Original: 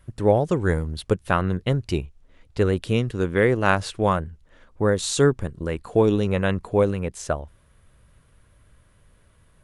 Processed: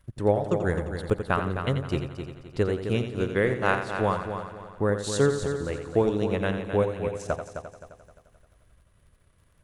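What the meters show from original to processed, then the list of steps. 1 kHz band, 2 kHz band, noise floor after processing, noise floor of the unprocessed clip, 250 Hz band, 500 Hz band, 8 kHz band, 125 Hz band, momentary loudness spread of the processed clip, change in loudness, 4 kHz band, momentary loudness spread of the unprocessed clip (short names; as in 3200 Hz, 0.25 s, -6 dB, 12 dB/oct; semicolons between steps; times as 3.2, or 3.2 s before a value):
-3.5 dB, -3.0 dB, -62 dBFS, -58 dBFS, -4.5 dB, -3.5 dB, -6.5 dB, -5.0 dB, 11 LU, -4.0 dB, -5.5 dB, 10 LU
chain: crackle 39/s -49 dBFS; transient shaper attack +3 dB, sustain -10 dB; multi-head echo 87 ms, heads first and third, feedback 52%, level -9 dB; gain -6 dB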